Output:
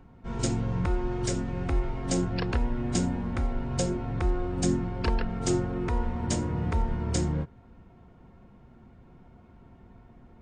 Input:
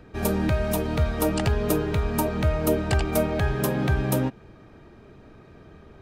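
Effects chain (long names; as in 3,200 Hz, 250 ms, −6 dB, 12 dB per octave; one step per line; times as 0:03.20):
wrong playback speed 78 rpm record played at 45 rpm
level −4 dB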